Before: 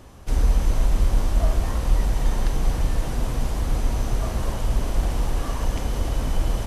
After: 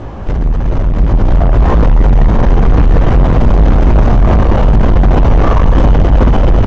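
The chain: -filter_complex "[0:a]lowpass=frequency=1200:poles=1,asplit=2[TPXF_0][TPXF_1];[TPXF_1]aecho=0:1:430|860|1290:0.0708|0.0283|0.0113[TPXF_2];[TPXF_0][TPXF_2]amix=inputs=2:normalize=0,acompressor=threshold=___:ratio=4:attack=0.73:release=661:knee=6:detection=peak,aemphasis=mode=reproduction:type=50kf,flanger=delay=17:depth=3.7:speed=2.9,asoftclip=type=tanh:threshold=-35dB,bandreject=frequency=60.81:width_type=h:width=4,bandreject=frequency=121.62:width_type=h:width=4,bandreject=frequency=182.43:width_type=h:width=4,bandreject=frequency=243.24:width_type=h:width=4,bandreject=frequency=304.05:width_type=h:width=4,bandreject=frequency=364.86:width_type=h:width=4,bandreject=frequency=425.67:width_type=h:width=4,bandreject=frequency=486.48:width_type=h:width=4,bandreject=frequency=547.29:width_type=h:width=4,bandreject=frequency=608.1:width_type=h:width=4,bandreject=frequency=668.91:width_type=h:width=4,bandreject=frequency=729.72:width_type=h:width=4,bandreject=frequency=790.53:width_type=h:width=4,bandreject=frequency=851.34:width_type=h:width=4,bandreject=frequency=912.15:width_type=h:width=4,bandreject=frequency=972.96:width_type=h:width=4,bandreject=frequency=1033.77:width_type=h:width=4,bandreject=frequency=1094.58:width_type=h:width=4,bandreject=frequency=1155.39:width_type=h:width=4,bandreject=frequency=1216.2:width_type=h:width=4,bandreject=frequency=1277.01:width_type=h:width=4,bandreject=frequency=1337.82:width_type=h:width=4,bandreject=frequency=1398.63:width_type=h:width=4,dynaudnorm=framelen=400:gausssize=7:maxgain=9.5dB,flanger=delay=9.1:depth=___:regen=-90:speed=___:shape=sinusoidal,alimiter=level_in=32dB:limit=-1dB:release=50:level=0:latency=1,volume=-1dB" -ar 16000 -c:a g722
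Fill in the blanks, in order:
-21dB, 2.9, 0.43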